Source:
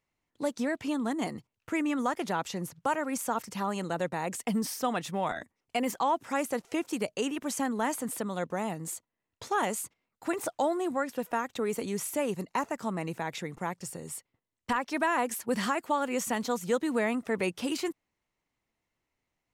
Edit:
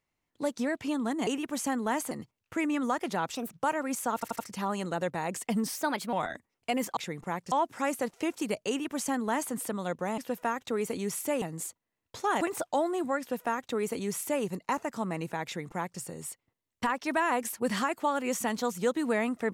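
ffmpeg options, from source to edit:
-filter_complex "[0:a]asplit=15[s0][s1][s2][s3][s4][s5][s6][s7][s8][s9][s10][s11][s12][s13][s14];[s0]atrim=end=1.272[s15];[s1]atrim=start=7.198:end=8.042[s16];[s2]atrim=start=1.268:end=2.514[s17];[s3]atrim=start=2.51:end=2.76,asetpts=PTS-STARTPTS,asetrate=59094,aresample=44100[s18];[s4]atrim=start=2.756:end=3.452[s19];[s5]atrim=start=3.368:end=3.452[s20];[s6]atrim=start=3.368:end=3.452[s21];[s7]atrim=start=3.368:end=4.754[s22];[s8]atrim=start=4.75:end=5.19,asetpts=PTS-STARTPTS,asetrate=53802,aresample=44100[s23];[s9]atrim=start=5.186:end=6.032[s24];[s10]atrim=start=13.308:end=13.862[s25];[s11]atrim=start=6.028:end=8.692[s26];[s12]atrim=start=11.058:end=12.302[s27];[s13]atrim=start=8.688:end=9.682[s28];[s14]atrim=start=10.268[s29];[s15][s16]acrossfade=d=0.004:c1=hsin:c2=hsin[s30];[s30][s17]acrossfade=d=0.004:c1=hsin:c2=hsin[s31];[s31][s18]acrossfade=d=0.004:c1=hsin:c2=hsin[s32];[s32][s19]acrossfade=d=0.004:c1=hsin:c2=hsin[s33];[s33][s20]acrossfade=d=0.004:c1=hsin:c2=hsin[s34];[s34][s21]acrossfade=d=0.004:c1=hsin:c2=hsin[s35];[s35][s22]acrossfade=d=0.004:c1=hsin:c2=hsin[s36];[s36][s23]acrossfade=d=0.004:c1=hsin:c2=hsin[s37];[s37][s24]acrossfade=d=0.004:c1=hsin:c2=hsin[s38];[s38][s25]acrossfade=d=0.004:c1=hsin:c2=hsin[s39];[s39][s26]acrossfade=d=0.004:c1=hsin:c2=hsin[s40];[s40][s27]acrossfade=d=0.004:c1=hsin:c2=hsin[s41];[s41][s28]acrossfade=d=0.004:c1=hsin:c2=hsin[s42];[s42][s29]acrossfade=d=0.004:c1=hsin:c2=hsin"

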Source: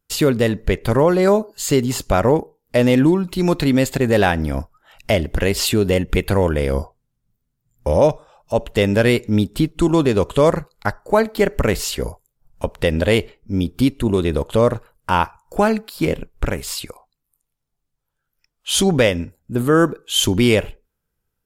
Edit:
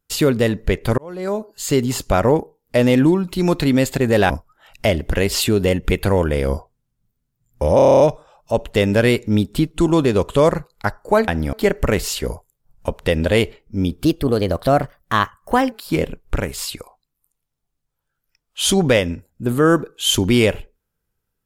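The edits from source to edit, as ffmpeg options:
-filter_complex "[0:a]asplit=15[s0][s1][s2][s3][s4][s5][s6][s7][s8][s9][s10][s11][s12][s13][s14];[s0]atrim=end=0.98,asetpts=PTS-STARTPTS,afade=t=out:st=0.976:d=0.004:c=hsin[s15];[s1]atrim=start=0.98:end=4.302,asetpts=PTS-STARTPTS,afade=t=in:d=0.85[s16];[s2]atrim=start=4.548:end=8.042[s17];[s3]atrim=start=8.008:end=8.042[s18];[s4]atrim=start=8.008:end=8.042[s19];[s5]atrim=start=8.008:end=8.042[s20];[s6]atrim=start=8.008:end=8.042[s21];[s7]atrim=start=8.008:end=8.042[s22];[s8]atrim=start=8.008:end=8.042[s23];[s9]atrim=start=8.008:end=8.042[s24];[s10]atrim=start=8.008:end=11.292[s25];[s11]atrim=start=4.298:end=4.552[s26];[s12]atrim=start=11.288:end=13.814[s27];[s13]atrim=start=13.81:end=15.81,asetpts=PTS-STARTPTS,asetrate=52920,aresample=44100[s28];[s14]atrim=start=15.806[s29];[s15][s16]concat=n=2:v=0:a=1[s30];[s30][s17]acrossfade=d=0.004:c1=hsin:c2=hsin[s31];[s31][s18]acrossfade=d=0.004:c1=hsin:c2=hsin[s32];[s32][s19]acrossfade=d=0.004:c1=hsin:c2=hsin[s33];[s33][s20]acrossfade=d=0.004:c1=hsin:c2=hsin[s34];[s34][s21]acrossfade=d=0.004:c1=hsin:c2=hsin[s35];[s35][s22]acrossfade=d=0.004:c1=hsin:c2=hsin[s36];[s36][s23]acrossfade=d=0.004:c1=hsin:c2=hsin[s37];[s37][s24]acrossfade=d=0.004:c1=hsin:c2=hsin[s38];[s38][s25]acrossfade=d=0.004:c1=hsin:c2=hsin[s39];[s39][s26]acrossfade=d=0.004:c1=hsin:c2=hsin[s40];[s40][s27]acrossfade=d=0.004:c1=hsin:c2=hsin[s41];[s41][s28]acrossfade=d=0.004:c1=hsin:c2=hsin[s42];[s42][s29]acrossfade=d=0.004:c1=hsin:c2=hsin"

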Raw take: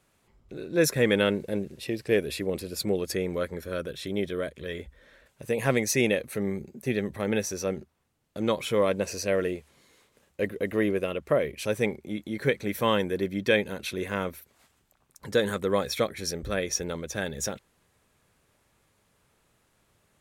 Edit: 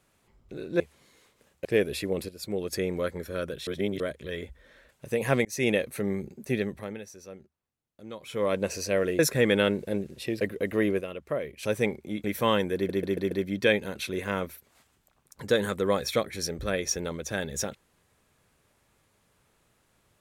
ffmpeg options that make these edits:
-filter_complex "[0:a]asplit=18[s0][s1][s2][s3][s4][s5][s6][s7][s8][s9][s10][s11][s12][s13][s14][s15][s16][s17];[s0]atrim=end=0.802[s18];[s1]atrim=start=9.558:end=10.412[s19];[s2]atrim=start=2.018:end=2.66,asetpts=PTS-STARTPTS,afade=t=out:st=0.638:d=0.004:c=hsin:silence=0.237137[s20];[s3]atrim=start=2.66:end=4.042,asetpts=PTS-STARTPTS,afade=t=in:d=0.54:silence=0.237137[s21];[s4]atrim=start=4.038:end=4.372,asetpts=PTS-STARTPTS,areverse[s22];[s5]atrim=start=4.368:end=5.82,asetpts=PTS-STARTPTS,afade=t=out:st=1.448:d=0.004:c=hsin[s23];[s6]atrim=start=5.82:end=7.36,asetpts=PTS-STARTPTS,afade=t=in:d=0.25,afade=t=out:st=1.13:d=0.41:silence=0.177828[s24];[s7]atrim=start=7.36:end=8.57,asetpts=PTS-STARTPTS,volume=0.178[s25];[s8]atrim=start=8.57:end=9.562,asetpts=PTS-STARTPTS,afade=t=in:d=0.41:silence=0.177828[s26];[s9]atrim=start=0.798:end=2.022[s27];[s10]atrim=start=10.408:end=11.012[s28];[s11]atrim=start=11.008:end=11.632,asetpts=PTS-STARTPTS,volume=0.473[s29];[s12]atrim=start=11.628:end=12.242[s30];[s13]atrim=start=12.638:end=13.292[s31];[s14]atrim=start=13.148:end=13.292[s32];[s15]atrim=start=13.148:end=13.292[s33];[s16]atrim=start=13.148:end=13.292[s34];[s17]atrim=start=13.148[s35];[s18][s19]acrossfade=d=0.004:c1=hsin:c2=hsin[s36];[s20][s21]concat=n=2:v=0:a=1[s37];[s36][s37]acrossfade=d=0.004:c1=hsin:c2=hsin[s38];[s38][s22]acrossfade=d=0.004:c1=hsin:c2=hsin[s39];[s23][s24][s25][s26]concat=n=4:v=0:a=1[s40];[s39][s40]acrossfade=d=0.004:c1=hsin:c2=hsin[s41];[s41][s27]acrossfade=d=0.004:c1=hsin:c2=hsin[s42];[s42][s28]acrossfade=d=0.004:c1=hsin:c2=hsin[s43];[s43][s29]acrossfade=d=0.004:c1=hsin:c2=hsin[s44];[s44][s30]acrossfade=d=0.004:c1=hsin:c2=hsin[s45];[s45][s31]acrossfade=d=0.004:c1=hsin:c2=hsin[s46];[s46][s32]acrossfade=d=0.004:c1=hsin:c2=hsin[s47];[s47][s33]acrossfade=d=0.004:c1=hsin:c2=hsin[s48];[s48][s34]acrossfade=d=0.004:c1=hsin:c2=hsin[s49];[s49][s35]acrossfade=d=0.004:c1=hsin:c2=hsin"

